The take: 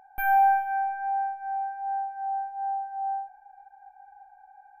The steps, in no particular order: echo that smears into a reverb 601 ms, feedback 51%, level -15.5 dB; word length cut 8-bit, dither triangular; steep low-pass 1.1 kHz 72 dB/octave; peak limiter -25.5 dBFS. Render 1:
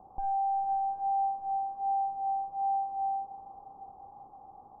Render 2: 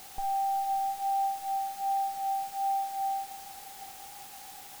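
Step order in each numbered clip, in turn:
word length cut > steep low-pass > peak limiter > echo that smears into a reverb; steep low-pass > peak limiter > word length cut > echo that smears into a reverb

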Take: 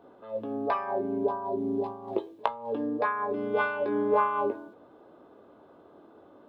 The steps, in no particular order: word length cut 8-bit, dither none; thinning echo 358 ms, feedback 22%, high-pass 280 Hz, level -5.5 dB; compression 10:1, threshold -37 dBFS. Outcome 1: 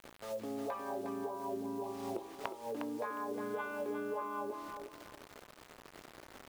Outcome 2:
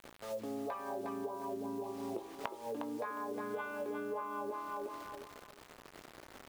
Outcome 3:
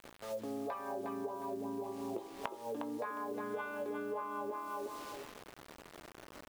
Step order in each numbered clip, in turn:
word length cut > compression > thinning echo; word length cut > thinning echo > compression; thinning echo > word length cut > compression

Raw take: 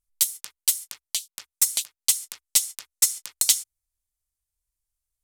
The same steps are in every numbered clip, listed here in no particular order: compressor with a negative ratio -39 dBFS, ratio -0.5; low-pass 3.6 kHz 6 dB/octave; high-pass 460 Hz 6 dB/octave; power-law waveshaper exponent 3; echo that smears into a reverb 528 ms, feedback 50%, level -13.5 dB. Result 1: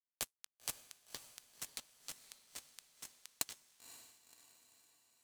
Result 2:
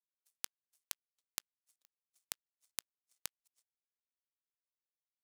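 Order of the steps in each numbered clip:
high-pass > power-law waveshaper > low-pass > compressor with a negative ratio > echo that smears into a reverb; low-pass > compressor with a negative ratio > echo that smears into a reverb > power-law waveshaper > high-pass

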